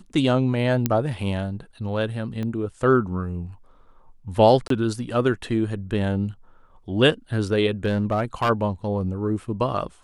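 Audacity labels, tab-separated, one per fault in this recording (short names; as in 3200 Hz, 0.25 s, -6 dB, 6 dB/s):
0.860000	0.860000	pop -6 dBFS
2.430000	2.430000	pop -19 dBFS
4.680000	4.700000	gap 23 ms
7.850000	8.500000	clipped -16.5 dBFS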